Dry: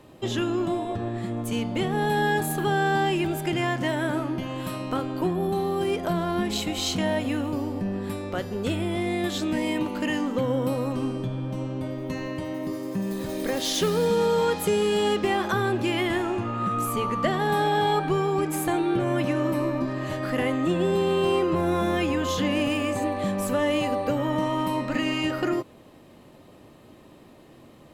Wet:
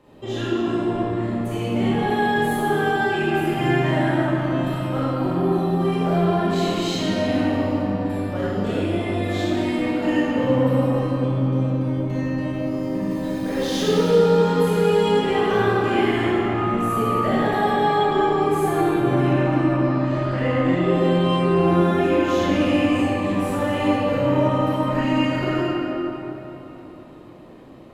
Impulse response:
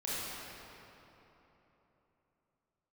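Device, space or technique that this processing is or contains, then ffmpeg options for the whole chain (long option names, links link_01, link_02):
swimming-pool hall: -filter_complex "[0:a]asettb=1/sr,asplit=3[link_01][link_02][link_03];[link_01]atrim=end=19.244[link_04];[link_02]atrim=start=19.24:end=20.93,asetpts=PTS-STARTPTS,afade=type=in:duration=0.004:curve=qsin,afade=type=out:start_time=1.686:duration=0.004:curve=qsin,lowpass=6900[link_05];[link_03]atrim=start=20.926[link_06];[link_04][link_05]acrossfade=duration=0.004:curve1=hsin:curve2=qsin[link_07];[link_07][link_06]acrossfade=duration=0.004:curve1=qsin:curve2=hsin[link_08];[1:a]atrim=start_sample=2205[link_09];[link_08][link_09]afir=irnorm=-1:irlink=0,highshelf=frequency=4100:gain=-8"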